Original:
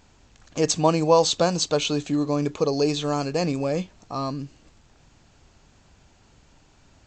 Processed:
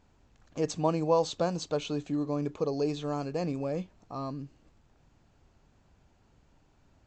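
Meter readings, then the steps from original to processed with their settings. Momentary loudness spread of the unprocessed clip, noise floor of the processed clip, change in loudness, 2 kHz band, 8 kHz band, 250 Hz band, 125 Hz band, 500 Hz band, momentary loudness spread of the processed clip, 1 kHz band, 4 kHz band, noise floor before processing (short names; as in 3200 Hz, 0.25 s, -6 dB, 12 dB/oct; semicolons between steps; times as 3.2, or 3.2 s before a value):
12 LU, -66 dBFS, -8.5 dB, -11.5 dB, -15.5 dB, -7.0 dB, -7.0 dB, -7.5 dB, 12 LU, -8.5 dB, -14.5 dB, -58 dBFS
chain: high shelf 2100 Hz -9.5 dB; gain -7 dB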